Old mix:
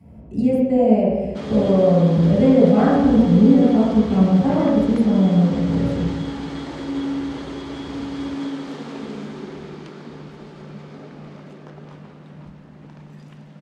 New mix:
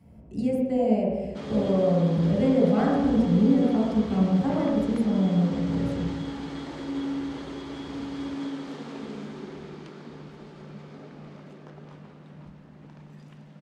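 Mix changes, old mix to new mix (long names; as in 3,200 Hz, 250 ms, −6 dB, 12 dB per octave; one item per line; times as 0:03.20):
speech: send −7.5 dB
background −5.5 dB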